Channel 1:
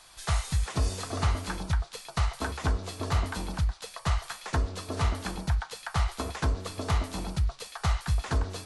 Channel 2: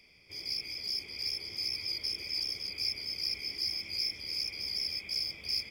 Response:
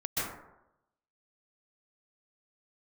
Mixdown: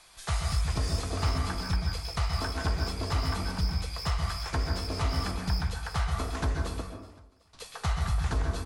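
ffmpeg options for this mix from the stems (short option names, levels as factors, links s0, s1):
-filter_complex "[0:a]volume=0.562,asplit=3[s0][s1][s2];[s0]atrim=end=6.81,asetpts=PTS-STARTPTS,afade=t=out:st=6.806:d=0.004:c=hsin[s3];[s1]atrim=start=6.81:end=7.53,asetpts=PTS-STARTPTS,volume=0[s4];[s2]atrim=start=7.53,asetpts=PTS-STARTPTS,afade=t=in:d=0.004:c=hsin[s5];[s3][s4][s5]concat=n=3:v=0:a=1,asplit=3[s6][s7][s8];[s7]volume=0.422[s9];[s8]volume=0.119[s10];[1:a]asoftclip=type=tanh:threshold=0.0355,volume=0.501,asplit=2[s11][s12];[s12]volume=0.335[s13];[2:a]atrim=start_sample=2205[s14];[s9][s14]afir=irnorm=-1:irlink=0[s15];[s10][s13]amix=inputs=2:normalize=0,aecho=0:1:375|750|1125|1500|1875|2250|2625:1|0.48|0.23|0.111|0.0531|0.0255|0.0122[s16];[s6][s11][s15][s16]amix=inputs=4:normalize=0"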